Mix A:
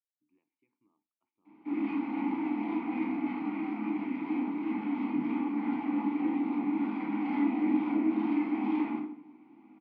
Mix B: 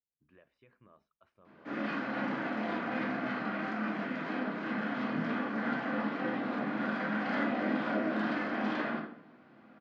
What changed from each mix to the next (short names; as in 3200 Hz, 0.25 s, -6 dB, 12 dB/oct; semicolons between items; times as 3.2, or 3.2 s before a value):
background -11.5 dB; master: remove vowel filter u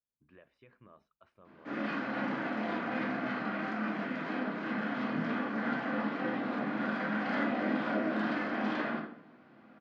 speech +3.5 dB